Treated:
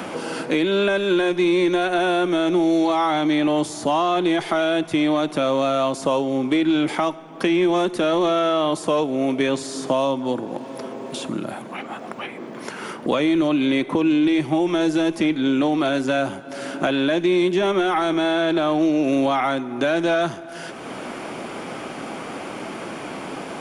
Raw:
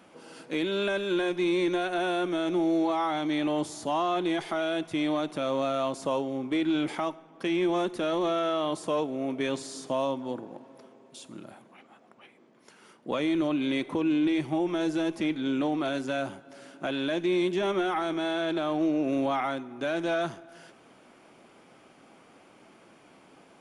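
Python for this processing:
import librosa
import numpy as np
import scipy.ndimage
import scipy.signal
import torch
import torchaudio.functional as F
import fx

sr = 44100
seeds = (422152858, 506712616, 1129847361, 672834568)

y = fx.band_squash(x, sr, depth_pct=70)
y = y * librosa.db_to_amplitude(8.0)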